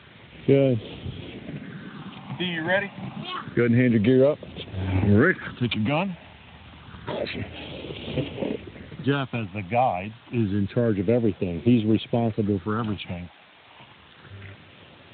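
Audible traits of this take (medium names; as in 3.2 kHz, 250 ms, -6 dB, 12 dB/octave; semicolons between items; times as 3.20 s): phasing stages 6, 0.28 Hz, lowest notch 370–1600 Hz; a quantiser's noise floor 8-bit, dither triangular; Speex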